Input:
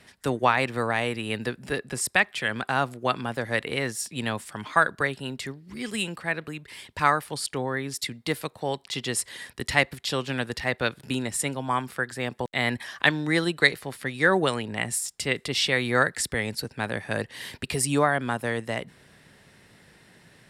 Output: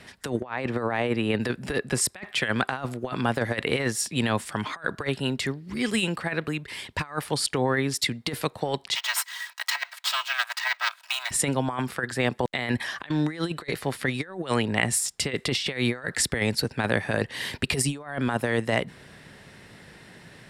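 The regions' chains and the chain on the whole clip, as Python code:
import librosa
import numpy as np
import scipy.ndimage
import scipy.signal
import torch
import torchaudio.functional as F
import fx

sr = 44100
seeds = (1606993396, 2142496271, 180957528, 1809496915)

y = fx.chain(x, sr, fx.highpass(hz=370.0, slope=6),
    fx.tilt_eq(slope=-3.0), at=(0.4, 1.4))
y = fx.chain(y, sr, fx.lower_of_two(delay_ms=3.1),
    fx.steep_highpass(hz=870.0, slope=36),
    fx.resample_bad(factor=2, down='filtered', up='hold'), at=(8.95, 11.31))
y = fx.high_shelf(y, sr, hz=8000.0, db=-6.5)
y = fx.over_compress(y, sr, threshold_db=-29.0, ratio=-0.5)
y = y * librosa.db_to_amplitude(3.5)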